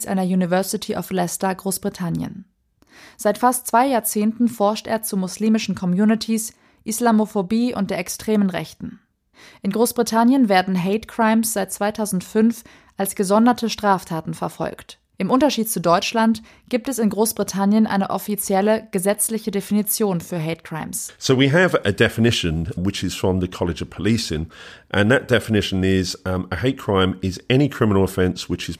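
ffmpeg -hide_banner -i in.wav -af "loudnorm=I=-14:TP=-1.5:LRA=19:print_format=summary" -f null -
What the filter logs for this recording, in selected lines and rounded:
Input Integrated:    -20.2 LUFS
Input True Peak:      -2.7 dBTP
Input LRA:             2.1 LU
Input Threshold:     -30.5 LUFS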